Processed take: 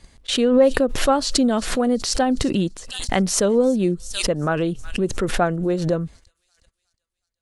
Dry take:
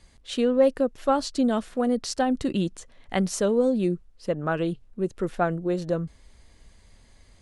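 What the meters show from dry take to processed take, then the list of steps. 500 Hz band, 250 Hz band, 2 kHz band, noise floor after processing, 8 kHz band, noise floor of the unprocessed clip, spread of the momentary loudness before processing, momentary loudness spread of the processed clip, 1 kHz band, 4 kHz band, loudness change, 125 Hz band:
+4.5 dB, +4.5 dB, +7.5 dB, -81 dBFS, +11.5 dB, -56 dBFS, 9 LU, 8 LU, +4.5 dB, +11.0 dB, +5.0 dB, +5.5 dB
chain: gate -45 dBFS, range -39 dB; thin delay 0.363 s, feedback 45%, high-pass 5000 Hz, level -14.5 dB; backwards sustainer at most 61 dB/s; gain +4 dB

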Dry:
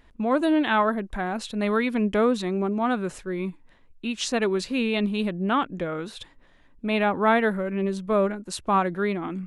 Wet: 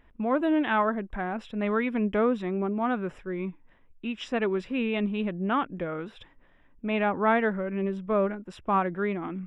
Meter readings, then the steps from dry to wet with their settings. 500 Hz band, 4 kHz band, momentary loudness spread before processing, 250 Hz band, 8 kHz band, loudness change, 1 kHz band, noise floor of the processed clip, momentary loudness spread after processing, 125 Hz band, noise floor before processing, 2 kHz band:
-3.0 dB, -8.5 dB, 10 LU, -3.0 dB, under -20 dB, -3.0 dB, -3.0 dB, -58 dBFS, 10 LU, -3.0 dB, -55 dBFS, -3.5 dB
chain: polynomial smoothing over 25 samples; gain -3 dB

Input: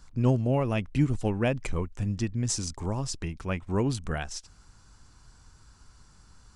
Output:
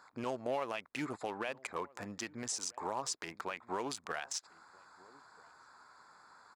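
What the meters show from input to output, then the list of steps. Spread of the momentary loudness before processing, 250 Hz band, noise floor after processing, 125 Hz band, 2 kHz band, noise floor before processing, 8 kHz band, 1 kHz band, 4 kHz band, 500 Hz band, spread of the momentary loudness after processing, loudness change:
8 LU, -15.5 dB, -66 dBFS, -26.5 dB, -4.0 dB, -57 dBFS, -4.5 dB, -2.0 dB, -4.0 dB, -8.5 dB, 21 LU, -10.5 dB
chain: Wiener smoothing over 15 samples; HPF 810 Hz 12 dB/oct; compressor 4:1, threshold -42 dBFS, peak gain reduction 13 dB; limiter -36.5 dBFS, peak gain reduction 9 dB; outdoor echo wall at 220 m, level -23 dB; gain +10.5 dB

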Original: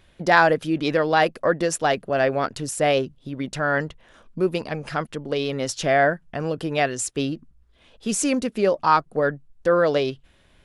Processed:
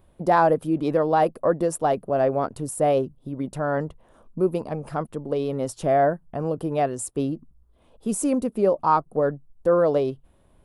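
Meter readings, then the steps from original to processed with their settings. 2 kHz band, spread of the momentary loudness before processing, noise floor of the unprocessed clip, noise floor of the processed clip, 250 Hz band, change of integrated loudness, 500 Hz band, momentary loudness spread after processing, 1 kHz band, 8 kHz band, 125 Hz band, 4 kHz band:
-12.0 dB, 10 LU, -58 dBFS, -59 dBFS, 0.0 dB, -1.5 dB, 0.0 dB, 10 LU, -1.0 dB, -5.0 dB, 0.0 dB, -14.0 dB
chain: band shelf 3200 Hz -14 dB 2.5 oct

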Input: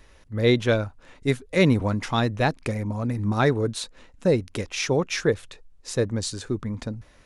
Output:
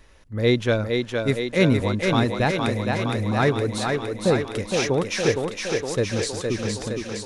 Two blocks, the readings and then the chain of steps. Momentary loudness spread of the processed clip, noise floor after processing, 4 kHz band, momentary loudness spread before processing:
6 LU, -39 dBFS, +3.0 dB, 12 LU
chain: thinning echo 0.464 s, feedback 73%, high-pass 180 Hz, level -3.5 dB

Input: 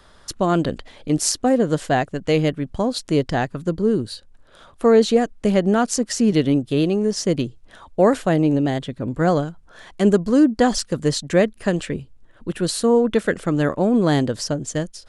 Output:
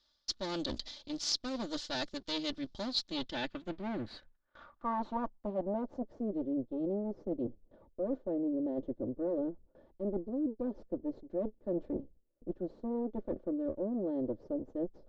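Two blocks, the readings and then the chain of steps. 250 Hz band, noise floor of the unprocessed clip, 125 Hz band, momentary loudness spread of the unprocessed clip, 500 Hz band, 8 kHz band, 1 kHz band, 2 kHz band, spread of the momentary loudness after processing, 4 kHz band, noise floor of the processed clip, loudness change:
-16.5 dB, -50 dBFS, -25.0 dB, 10 LU, -18.0 dB, under -20 dB, -17.0 dB, -20.0 dB, 6 LU, -10.0 dB, -73 dBFS, -17.0 dB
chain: minimum comb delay 3.4 ms; gate with hold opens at -38 dBFS; band shelf 4900 Hz +11 dB 1.3 oct; reverse; compressor 6:1, threshold -28 dBFS, peak gain reduction 16.5 dB; reverse; low-pass sweep 4700 Hz -> 480 Hz, 2.79–6.26; gain -8 dB

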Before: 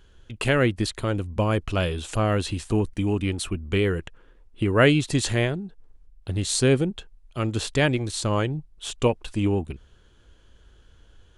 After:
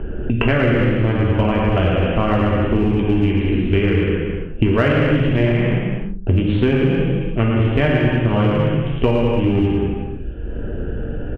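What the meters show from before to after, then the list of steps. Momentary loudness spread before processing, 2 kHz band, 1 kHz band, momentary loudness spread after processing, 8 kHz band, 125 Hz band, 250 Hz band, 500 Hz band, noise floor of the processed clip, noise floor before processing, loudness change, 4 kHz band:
12 LU, +5.0 dB, +6.0 dB, 10 LU, under -25 dB, +9.0 dB, +9.0 dB, +6.5 dB, -26 dBFS, -55 dBFS, +6.5 dB, 0.0 dB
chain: Wiener smoothing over 41 samples; steep low-pass 3100 Hz 72 dB/oct; low shelf 100 Hz +8.5 dB; on a send: bouncing-ball echo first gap 0.11 s, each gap 0.7×, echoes 5; on the sum: non-linear reverb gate 0.36 s falling, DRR -3 dB; in parallel at -9 dB: hard clip -14 dBFS, distortion -11 dB; on the sum: three-band squash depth 100%; gain -2 dB

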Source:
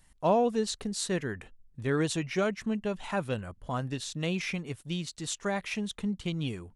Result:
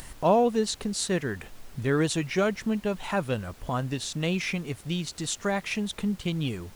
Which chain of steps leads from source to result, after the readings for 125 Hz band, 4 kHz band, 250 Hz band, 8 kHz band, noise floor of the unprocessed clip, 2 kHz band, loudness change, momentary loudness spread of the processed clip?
+3.5 dB, +4.0 dB, +3.5 dB, +4.0 dB, -63 dBFS, +3.5 dB, +3.5 dB, 8 LU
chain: upward compressor, threshold -32 dBFS; added noise pink -56 dBFS; gain +3.5 dB

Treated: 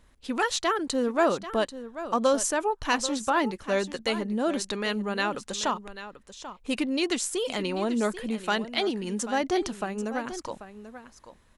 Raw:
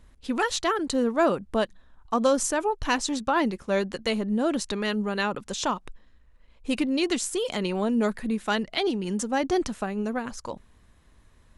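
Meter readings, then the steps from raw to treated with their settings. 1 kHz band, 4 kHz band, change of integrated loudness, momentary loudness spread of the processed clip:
0.0 dB, 0.0 dB, -1.0 dB, 15 LU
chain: low shelf 220 Hz -7 dB; echo 0.788 s -13 dB

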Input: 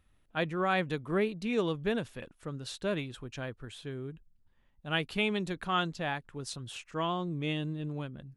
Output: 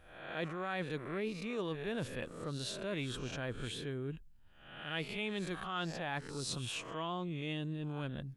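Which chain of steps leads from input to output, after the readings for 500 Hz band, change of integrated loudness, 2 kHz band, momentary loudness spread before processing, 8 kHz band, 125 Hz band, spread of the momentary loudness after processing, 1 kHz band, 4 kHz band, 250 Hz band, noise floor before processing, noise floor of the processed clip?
-6.5 dB, -5.5 dB, -5.5 dB, 11 LU, +1.5 dB, -3.5 dB, 4 LU, -7.5 dB, -3.5 dB, -6.0 dB, -68 dBFS, -58 dBFS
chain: spectral swells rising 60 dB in 0.52 s; reverse; compressor 6:1, threshold -39 dBFS, peak gain reduction 14.5 dB; reverse; gain +3 dB

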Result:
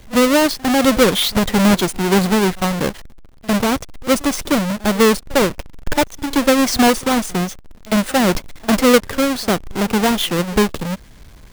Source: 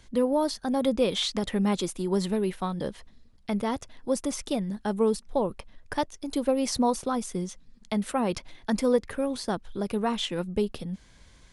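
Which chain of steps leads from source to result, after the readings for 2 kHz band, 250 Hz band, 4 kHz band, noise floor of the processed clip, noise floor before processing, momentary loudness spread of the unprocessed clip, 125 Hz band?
+19.5 dB, +11.5 dB, +13.0 dB, -42 dBFS, -56 dBFS, 10 LU, +12.0 dB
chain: half-waves squared off; reverse echo 53 ms -22 dB; gain +7.5 dB

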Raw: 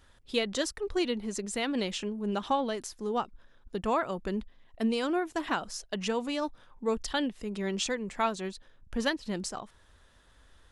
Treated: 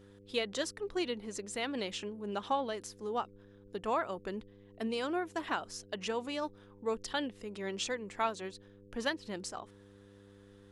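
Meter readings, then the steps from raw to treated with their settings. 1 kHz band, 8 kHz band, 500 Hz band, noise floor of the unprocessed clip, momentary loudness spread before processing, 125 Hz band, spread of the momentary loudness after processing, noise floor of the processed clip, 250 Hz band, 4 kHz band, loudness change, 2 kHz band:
-3.5 dB, -5.5 dB, -4.5 dB, -61 dBFS, 8 LU, -8.0 dB, 9 LU, -57 dBFS, -7.5 dB, -4.0 dB, -5.0 dB, -3.5 dB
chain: tone controls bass -9 dB, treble -2 dB; buzz 100 Hz, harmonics 5, -54 dBFS -1 dB/oct; gain -3.5 dB

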